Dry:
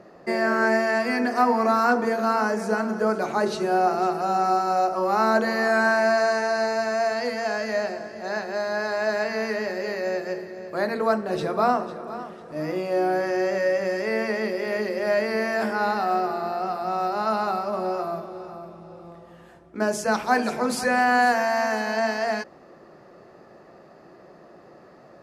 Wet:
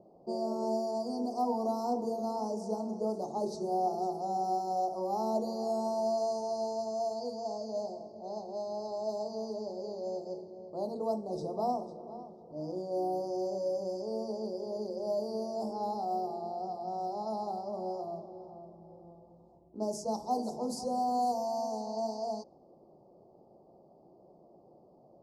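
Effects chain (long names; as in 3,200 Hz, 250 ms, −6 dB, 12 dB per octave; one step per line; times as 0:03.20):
elliptic band-stop filter 860–4,900 Hz, stop band 50 dB
low-pass that shuts in the quiet parts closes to 2,400 Hz, open at −20 dBFS
level −9 dB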